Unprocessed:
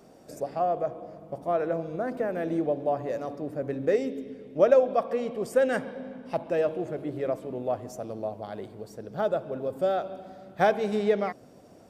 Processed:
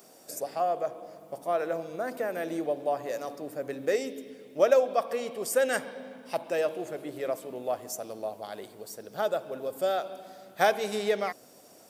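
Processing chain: RIAA curve recording

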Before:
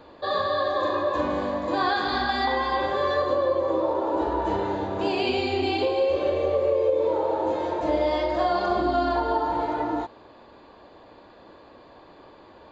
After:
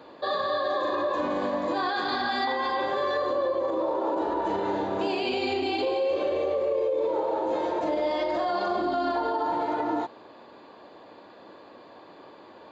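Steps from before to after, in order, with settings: HPF 160 Hz 12 dB/oct; limiter -20 dBFS, peak gain reduction 8 dB; gain +1 dB

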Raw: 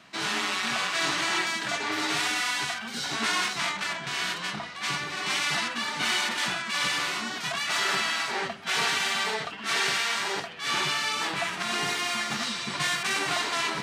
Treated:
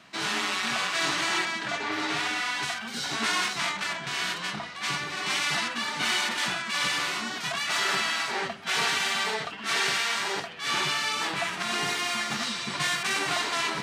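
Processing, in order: 1.45–2.63 high shelf 6400 Hz -11.5 dB

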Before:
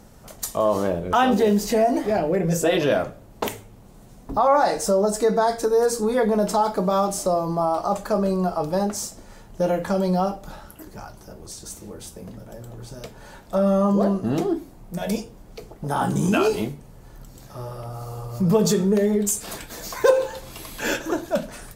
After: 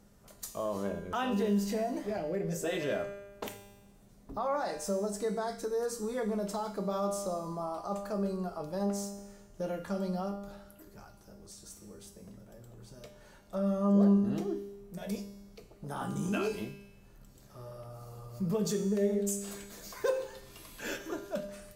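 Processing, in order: bell 840 Hz -4 dB 0.51 oct; resonator 200 Hz, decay 1.2 s, mix 80%

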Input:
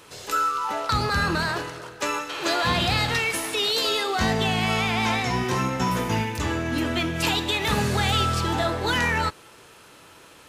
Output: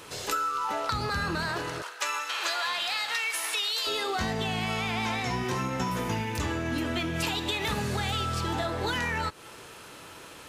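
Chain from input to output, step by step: 1.82–3.87 HPF 960 Hz 12 dB/oct; compressor 6:1, threshold -30 dBFS, peak gain reduction 11.5 dB; gain +3 dB

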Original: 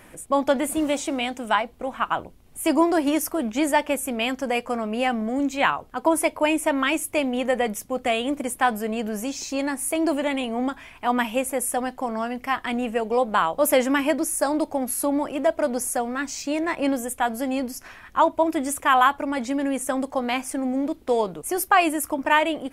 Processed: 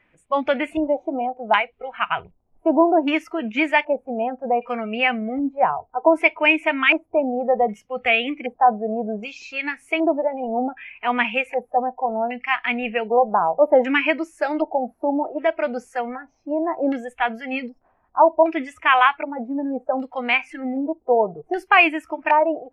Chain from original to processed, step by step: dynamic EQ 2400 Hz, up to +5 dB, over -44 dBFS, Q 3.7; LFO low-pass square 0.65 Hz 780–2500 Hz; spectral noise reduction 17 dB

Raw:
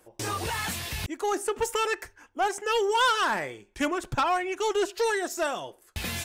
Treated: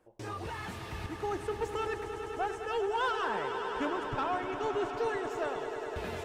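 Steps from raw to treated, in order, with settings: LPF 1500 Hz 6 dB/oct; on a send: swelling echo 0.102 s, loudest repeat 5, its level -11.5 dB; on the sum: gain -6.5 dB

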